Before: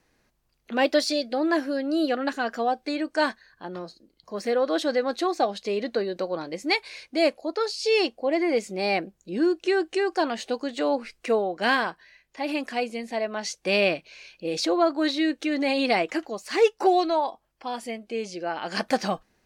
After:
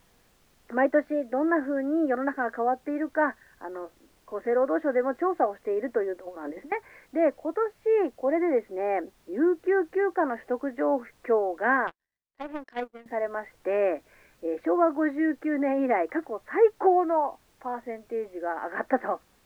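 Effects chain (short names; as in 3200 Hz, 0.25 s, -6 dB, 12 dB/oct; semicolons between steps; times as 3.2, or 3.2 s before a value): Chebyshev band-pass 250–1900 Hz, order 4; 6.18–6.72 negative-ratio compressor -40 dBFS, ratio -1; added noise pink -63 dBFS; 11.87–13.06 power-law curve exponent 2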